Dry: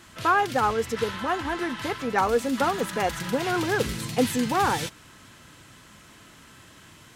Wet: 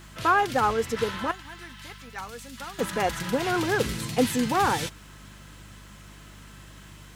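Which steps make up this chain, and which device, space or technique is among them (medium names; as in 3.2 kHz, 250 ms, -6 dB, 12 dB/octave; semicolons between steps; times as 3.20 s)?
1.31–2.79 s: amplifier tone stack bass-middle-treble 5-5-5; video cassette with head-switching buzz (mains buzz 50 Hz, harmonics 4, -49 dBFS -4 dB/octave; white noise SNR 39 dB)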